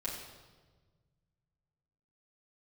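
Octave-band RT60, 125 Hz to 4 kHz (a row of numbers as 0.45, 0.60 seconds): 2.8, 1.9, 1.5, 1.3, 1.1, 1.1 seconds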